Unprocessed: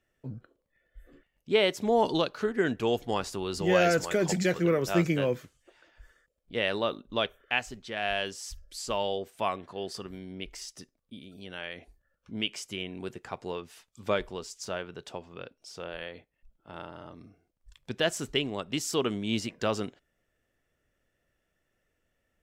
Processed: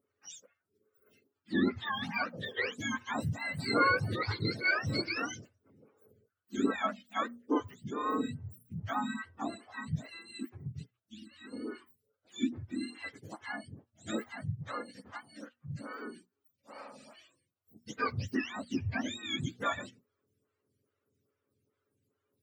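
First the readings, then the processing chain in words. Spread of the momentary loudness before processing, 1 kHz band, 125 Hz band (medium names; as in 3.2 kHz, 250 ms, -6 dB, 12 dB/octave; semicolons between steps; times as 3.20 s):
18 LU, -2.0 dB, -2.0 dB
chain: spectrum inverted on a logarithmic axis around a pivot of 870 Hz; hum notches 60/120/180/240 Hz; lamp-driven phase shifter 2.4 Hz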